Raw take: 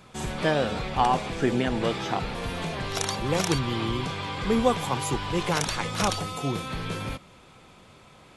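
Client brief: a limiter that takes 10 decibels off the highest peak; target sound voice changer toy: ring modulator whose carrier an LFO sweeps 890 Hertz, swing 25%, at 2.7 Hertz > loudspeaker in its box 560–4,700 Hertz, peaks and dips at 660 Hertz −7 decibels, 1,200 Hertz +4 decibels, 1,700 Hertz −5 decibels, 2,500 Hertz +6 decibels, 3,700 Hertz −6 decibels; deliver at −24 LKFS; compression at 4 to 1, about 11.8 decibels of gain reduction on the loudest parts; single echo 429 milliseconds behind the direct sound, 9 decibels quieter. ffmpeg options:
ffmpeg -i in.wav -af "acompressor=threshold=-32dB:ratio=4,alimiter=level_in=2.5dB:limit=-24dB:level=0:latency=1,volume=-2.5dB,aecho=1:1:429:0.355,aeval=exprs='val(0)*sin(2*PI*890*n/s+890*0.25/2.7*sin(2*PI*2.7*n/s))':channel_layout=same,highpass=560,equalizer=frequency=660:width_type=q:width=4:gain=-7,equalizer=frequency=1200:width_type=q:width=4:gain=4,equalizer=frequency=1700:width_type=q:width=4:gain=-5,equalizer=frequency=2500:width_type=q:width=4:gain=6,equalizer=frequency=3700:width_type=q:width=4:gain=-6,lowpass=frequency=4700:width=0.5412,lowpass=frequency=4700:width=1.3066,volume=15.5dB" out.wav

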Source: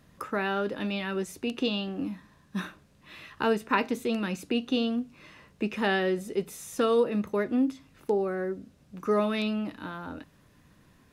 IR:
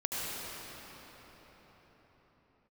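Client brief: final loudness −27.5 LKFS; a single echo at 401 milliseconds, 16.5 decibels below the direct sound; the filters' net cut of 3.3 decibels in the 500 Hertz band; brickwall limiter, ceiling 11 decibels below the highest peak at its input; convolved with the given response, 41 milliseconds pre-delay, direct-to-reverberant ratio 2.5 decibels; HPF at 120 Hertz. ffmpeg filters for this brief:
-filter_complex "[0:a]highpass=120,equalizer=frequency=500:width_type=o:gain=-4,alimiter=limit=-23.5dB:level=0:latency=1,aecho=1:1:401:0.15,asplit=2[link_01][link_02];[1:a]atrim=start_sample=2205,adelay=41[link_03];[link_02][link_03]afir=irnorm=-1:irlink=0,volume=-9.5dB[link_04];[link_01][link_04]amix=inputs=2:normalize=0,volume=4.5dB"

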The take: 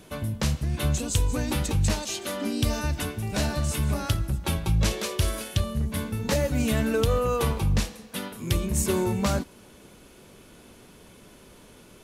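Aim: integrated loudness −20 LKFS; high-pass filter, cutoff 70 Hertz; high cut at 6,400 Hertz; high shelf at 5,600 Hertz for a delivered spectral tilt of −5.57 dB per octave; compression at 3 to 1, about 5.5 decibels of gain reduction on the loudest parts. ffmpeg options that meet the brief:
ffmpeg -i in.wav -af "highpass=70,lowpass=6400,highshelf=frequency=5600:gain=-7.5,acompressor=threshold=-28dB:ratio=3,volume=12.5dB" out.wav

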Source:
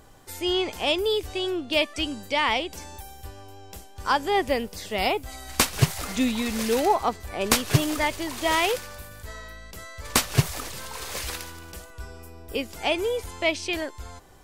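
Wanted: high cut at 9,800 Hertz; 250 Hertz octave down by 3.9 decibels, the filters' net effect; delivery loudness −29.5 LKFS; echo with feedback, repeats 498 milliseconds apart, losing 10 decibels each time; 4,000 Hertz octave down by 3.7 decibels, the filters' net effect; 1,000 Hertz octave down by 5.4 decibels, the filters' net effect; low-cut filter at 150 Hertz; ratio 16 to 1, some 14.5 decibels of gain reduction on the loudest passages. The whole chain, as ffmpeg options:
ffmpeg -i in.wav -af "highpass=150,lowpass=9800,equalizer=frequency=250:width_type=o:gain=-4,equalizer=frequency=1000:width_type=o:gain=-6.5,equalizer=frequency=4000:width_type=o:gain=-4.5,acompressor=threshold=-33dB:ratio=16,aecho=1:1:498|996|1494|1992:0.316|0.101|0.0324|0.0104,volume=9dB" out.wav

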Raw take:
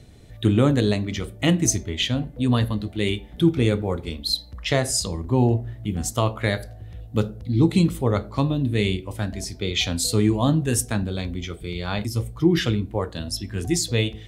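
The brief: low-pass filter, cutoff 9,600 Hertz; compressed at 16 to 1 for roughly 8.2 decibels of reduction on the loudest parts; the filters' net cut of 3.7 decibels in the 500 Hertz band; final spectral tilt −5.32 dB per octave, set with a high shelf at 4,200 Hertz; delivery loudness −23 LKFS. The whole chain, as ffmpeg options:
ffmpeg -i in.wav -af "lowpass=9600,equalizer=frequency=500:width_type=o:gain=-5,highshelf=frequency=4200:gain=-8,acompressor=threshold=-22dB:ratio=16,volume=6.5dB" out.wav

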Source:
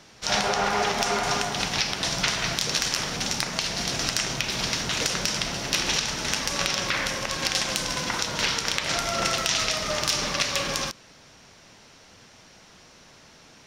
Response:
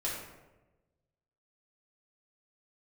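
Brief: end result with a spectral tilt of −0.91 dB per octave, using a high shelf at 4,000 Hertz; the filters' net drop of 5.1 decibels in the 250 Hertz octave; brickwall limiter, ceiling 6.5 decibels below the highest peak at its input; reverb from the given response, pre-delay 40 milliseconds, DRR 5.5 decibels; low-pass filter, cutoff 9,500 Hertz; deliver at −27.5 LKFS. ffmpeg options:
-filter_complex "[0:a]lowpass=9500,equalizer=frequency=250:width_type=o:gain=-7.5,highshelf=frequency=4000:gain=3,alimiter=limit=-10dB:level=0:latency=1,asplit=2[link_01][link_02];[1:a]atrim=start_sample=2205,adelay=40[link_03];[link_02][link_03]afir=irnorm=-1:irlink=0,volume=-10dB[link_04];[link_01][link_04]amix=inputs=2:normalize=0,volume=-3.5dB"

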